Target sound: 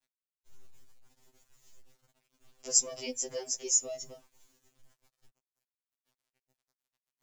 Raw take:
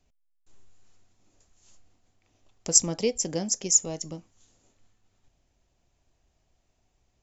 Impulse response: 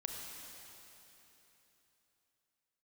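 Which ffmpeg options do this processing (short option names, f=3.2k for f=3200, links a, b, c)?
-filter_complex "[0:a]acrossover=split=290|670|1800[a][b][c][d];[a]alimiter=level_in=12.5dB:limit=-24dB:level=0:latency=1,volume=-12.5dB[e];[e][b][c][d]amix=inputs=4:normalize=0,acrusher=bits=9:mix=0:aa=0.000001,afftfilt=real='re*2.45*eq(mod(b,6),0)':imag='im*2.45*eq(mod(b,6),0)':win_size=2048:overlap=0.75,volume=-3.5dB"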